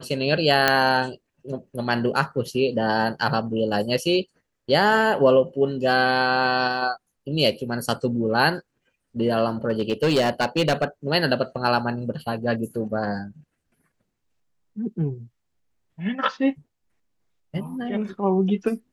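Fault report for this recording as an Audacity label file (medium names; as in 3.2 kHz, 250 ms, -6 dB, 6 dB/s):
0.680000	0.680000	pop -2 dBFS
9.700000	10.840000	clipped -15 dBFS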